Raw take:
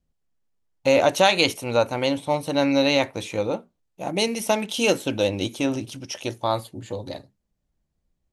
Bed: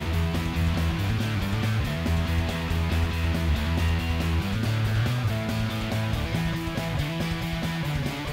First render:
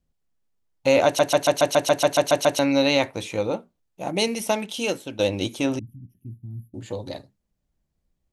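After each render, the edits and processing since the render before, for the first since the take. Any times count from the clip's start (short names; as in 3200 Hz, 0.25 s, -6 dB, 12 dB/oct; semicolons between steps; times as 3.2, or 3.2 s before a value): 1.05 stutter in place 0.14 s, 11 plays; 4.32–5.19 fade out, to -11 dB; 5.79–6.74 inverse Chebyshev band-stop 510–8100 Hz, stop band 50 dB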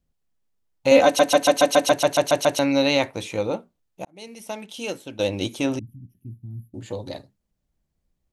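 0.91–1.92 comb 3.9 ms, depth 92%; 4.05–5.45 fade in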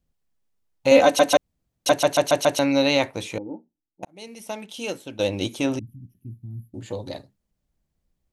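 1.37–1.86 room tone; 3.38–4.03 vocal tract filter u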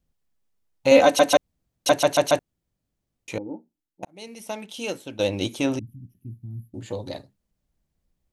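2.39–3.28 room tone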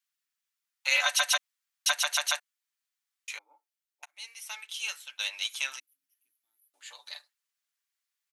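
HPF 1300 Hz 24 dB/oct; comb 6.9 ms, depth 51%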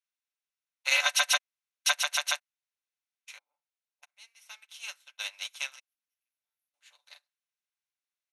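per-bin compression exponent 0.6; upward expander 2.5:1, over -45 dBFS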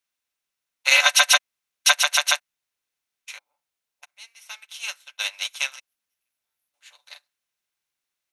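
gain +9 dB; limiter -3 dBFS, peak gain reduction 0.5 dB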